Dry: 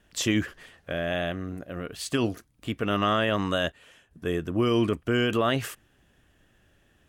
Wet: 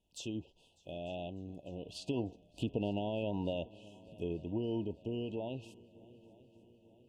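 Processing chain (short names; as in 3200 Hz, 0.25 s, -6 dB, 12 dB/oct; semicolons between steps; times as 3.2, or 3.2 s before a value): Doppler pass-by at 2.99, 7 m/s, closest 3 m; compressor 10:1, threshold -31 dBFS, peak gain reduction 11.5 dB; FFT band-reject 980–2500 Hz; treble ducked by the level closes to 2100 Hz, closed at -36.5 dBFS; multi-head echo 0.299 s, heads second and third, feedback 60%, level -24 dB; gain +1 dB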